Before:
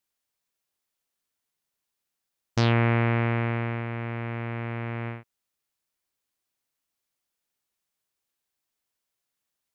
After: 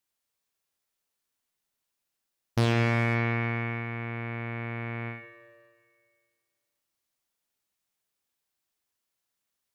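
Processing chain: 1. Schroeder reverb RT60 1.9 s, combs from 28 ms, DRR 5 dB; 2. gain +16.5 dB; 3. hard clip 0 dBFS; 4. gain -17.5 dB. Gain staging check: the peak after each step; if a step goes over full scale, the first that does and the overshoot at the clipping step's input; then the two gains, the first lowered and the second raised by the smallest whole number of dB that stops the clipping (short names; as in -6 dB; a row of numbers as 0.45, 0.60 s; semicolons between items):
-10.5, +6.0, 0.0, -17.5 dBFS; step 2, 6.0 dB; step 2 +10.5 dB, step 4 -11.5 dB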